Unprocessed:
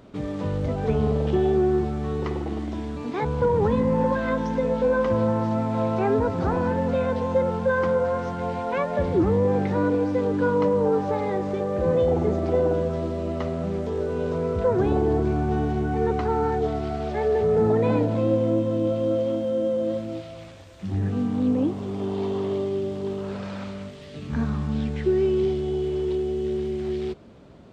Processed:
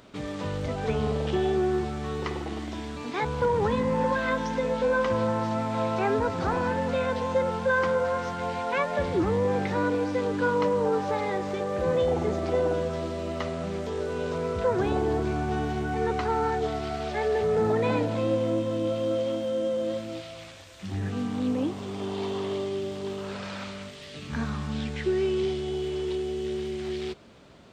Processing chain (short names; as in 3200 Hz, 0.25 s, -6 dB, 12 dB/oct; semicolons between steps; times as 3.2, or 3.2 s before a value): tilt shelf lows -6 dB